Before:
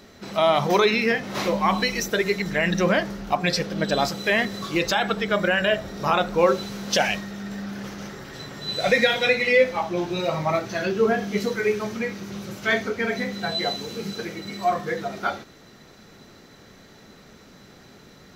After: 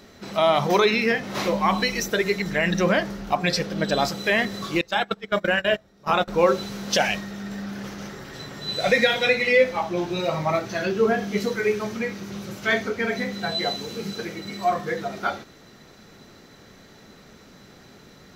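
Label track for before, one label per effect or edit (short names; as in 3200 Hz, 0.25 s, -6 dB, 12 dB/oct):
4.810000	6.280000	gate -23 dBFS, range -22 dB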